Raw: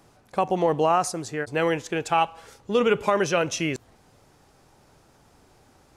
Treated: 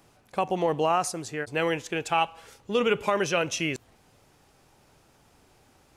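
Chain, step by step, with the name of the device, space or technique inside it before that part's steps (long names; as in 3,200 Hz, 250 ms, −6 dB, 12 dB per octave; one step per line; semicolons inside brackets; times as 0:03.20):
presence and air boost (parametric band 2,700 Hz +4.5 dB 0.86 octaves; high-shelf EQ 10,000 Hz +6 dB)
level −3.5 dB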